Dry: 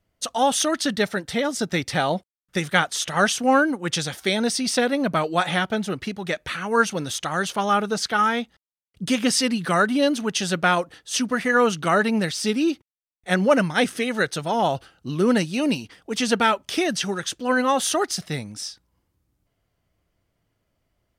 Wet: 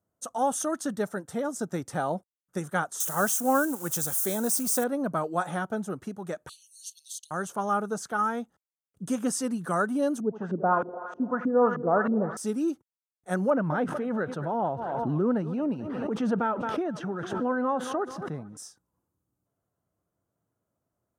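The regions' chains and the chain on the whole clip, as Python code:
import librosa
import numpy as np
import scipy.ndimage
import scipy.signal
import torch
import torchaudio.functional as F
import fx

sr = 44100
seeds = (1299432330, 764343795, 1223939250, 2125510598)

y = fx.chain(x, sr, fx.crossing_spikes(level_db=-21.0),
    fx.high_shelf(hz=4200.0, db=5.0),
    fx.quant_companded(bits=6), at=(3.0, 4.84))
y = fx.chain(y, sr, fx.steep_highpass(hz=2900.0, slope=72),
    fx.peak_eq(hz=4300.0, db=13.5, octaves=0.25),
    fx.band_squash(depth_pct=40), at=(6.49, 7.31))
y = fx.chain(y, sr, fx.lowpass(hz=5900.0, slope=12),
    fx.echo_thinned(ms=82, feedback_pct=82, hz=180.0, wet_db=-12.5),
    fx.filter_lfo_lowpass(shape='saw_up', hz=3.2, low_hz=250.0, high_hz=2200.0, q=2.0), at=(10.2, 12.37))
y = fx.chain(y, sr, fx.air_absorb(metres=370.0),
    fx.echo_thinned(ms=221, feedback_pct=58, hz=220.0, wet_db=-20.5),
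    fx.pre_swell(db_per_s=22.0), at=(13.5, 18.57))
y = scipy.signal.sosfilt(scipy.signal.butter(2, 110.0, 'highpass', fs=sr, output='sos'), y)
y = fx.band_shelf(y, sr, hz=3100.0, db=-16.0, octaves=1.7)
y = F.gain(torch.from_numpy(y), -6.0).numpy()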